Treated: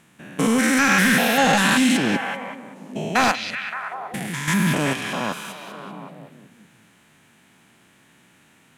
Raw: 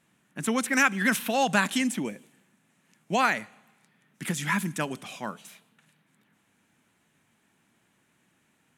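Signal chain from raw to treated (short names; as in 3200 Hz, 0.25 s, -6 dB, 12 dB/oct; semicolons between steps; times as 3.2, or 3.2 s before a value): stepped spectrum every 0.2 s; 3.31–4.48 compressor 6:1, threshold -40 dBFS, peak gain reduction 14 dB; sine folder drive 8 dB, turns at -13 dBFS; delay with a stepping band-pass 0.19 s, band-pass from 3700 Hz, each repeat -0.7 oct, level -2 dB; on a send at -23.5 dB: reverb, pre-delay 3 ms; on the sum: gain +1.5 dB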